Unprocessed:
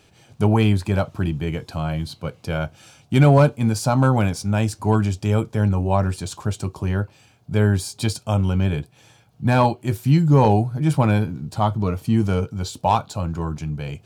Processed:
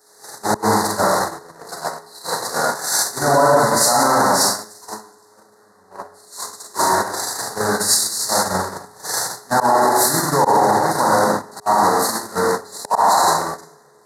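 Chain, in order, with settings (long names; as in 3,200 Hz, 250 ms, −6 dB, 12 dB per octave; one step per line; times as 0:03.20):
linear delta modulator 64 kbit/s, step −17 dBFS
high-pass filter 270 Hz 12 dB per octave
parametric band 960 Hz +12 dB 1.7 octaves
0:04.29–0:06.56: downward compressor 3 to 1, threshold −17 dBFS, peak gain reduction 9 dB
high-shelf EQ 4,500 Hz +8.5 dB
four-comb reverb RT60 1.5 s, combs from 33 ms, DRR −3.5 dB
volume swells 129 ms
elliptic band-stop filter 1,900–4,000 Hz, stop band 40 dB
noise gate −12 dBFS, range −19 dB
steady tone 420 Hz −38 dBFS
boost into a limiter +6 dB
multiband upward and downward expander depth 100%
level −5.5 dB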